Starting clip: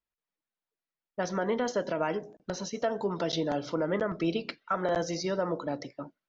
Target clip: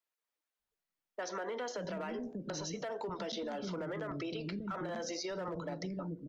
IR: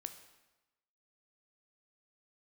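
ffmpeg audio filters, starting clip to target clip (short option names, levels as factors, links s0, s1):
-filter_complex "[0:a]acrossover=split=140|470|1100[s0][s1][s2][s3];[s2]volume=56.2,asoftclip=hard,volume=0.0178[s4];[s0][s1][s4][s3]amix=inputs=4:normalize=0,acrossover=split=300[s5][s6];[s5]adelay=590[s7];[s7][s6]amix=inputs=2:normalize=0,alimiter=level_in=1.58:limit=0.0631:level=0:latency=1:release=32,volume=0.631,acompressor=threshold=0.0141:ratio=6,volume=1.12"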